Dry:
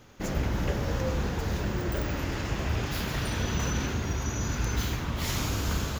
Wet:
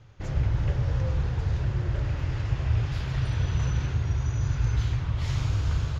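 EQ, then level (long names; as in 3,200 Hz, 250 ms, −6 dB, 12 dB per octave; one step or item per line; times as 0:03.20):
low-pass filter 5,100 Hz 12 dB per octave
low shelf with overshoot 160 Hz +8 dB, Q 3
−5.5 dB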